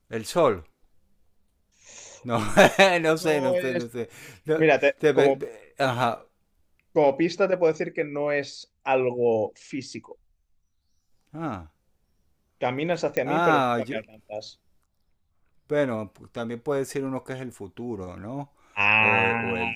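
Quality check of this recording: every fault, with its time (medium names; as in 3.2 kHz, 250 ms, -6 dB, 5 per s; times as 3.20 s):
5.45 s: dropout 2.9 ms
13.17 s: pop -12 dBFS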